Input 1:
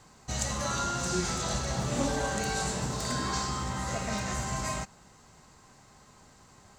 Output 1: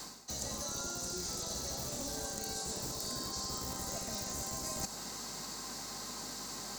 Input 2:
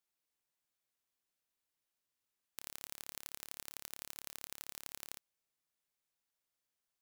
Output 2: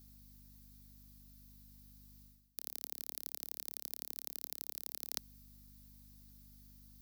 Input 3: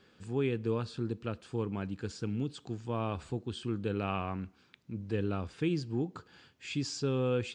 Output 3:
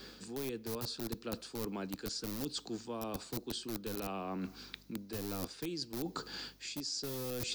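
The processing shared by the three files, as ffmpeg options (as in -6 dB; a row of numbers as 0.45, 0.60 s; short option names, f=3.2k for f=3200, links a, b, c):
-filter_complex "[0:a]acrossover=split=160|880[a][b][c];[a]acrusher=bits=5:mix=0:aa=0.000001[d];[d][b][c]amix=inputs=3:normalize=0,acrossover=split=110|320|820|5200[e][f][g][h][i];[e]acompressor=threshold=-42dB:ratio=4[j];[f]acompressor=threshold=-49dB:ratio=4[k];[g]acompressor=threshold=-39dB:ratio=4[l];[h]acompressor=threshold=-47dB:ratio=4[m];[i]acompressor=threshold=-41dB:ratio=4[n];[j][k][l][m][n]amix=inputs=5:normalize=0,aeval=exprs='val(0)+0.000316*(sin(2*PI*50*n/s)+sin(2*PI*2*50*n/s)/2+sin(2*PI*3*50*n/s)/3+sin(2*PI*4*50*n/s)/4+sin(2*PI*5*50*n/s)/5)':c=same,aexciter=amount=6:drive=2.7:freq=4.3k,equalizer=f=250:t=o:w=1:g=4,equalizer=f=4k:t=o:w=1:g=4,equalizer=f=8k:t=o:w=1:g=-9,areverse,acompressor=threshold=-46dB:ratio=16,areverse,volume=10dB"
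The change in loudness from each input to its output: -7.0, +4.5, -5.0 LU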